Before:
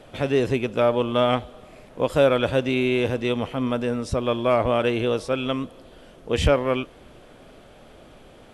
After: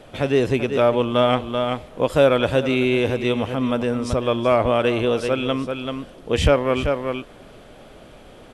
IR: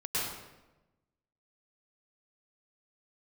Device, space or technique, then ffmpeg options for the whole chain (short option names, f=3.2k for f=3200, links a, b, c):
ducked delay: -filter_complex "[0:a]asplit=3[a][b][c];[b]adelay=385,volume=-5dB[d];[c]apad=whole_len=393586[e];[d][e]sidechaincompress=threshold=-31dB:ratio=8:attack=23:release=117[f];[a][f]amix=inputs=2:normalize=0,volume=2.5dB"